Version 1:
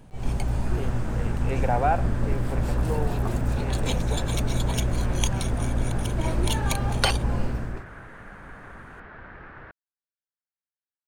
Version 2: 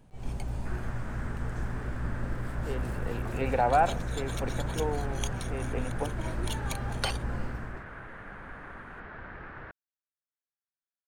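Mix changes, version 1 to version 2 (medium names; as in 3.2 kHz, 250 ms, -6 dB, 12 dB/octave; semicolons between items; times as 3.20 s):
speech: entry +1.90 s; first sound -8.5 dB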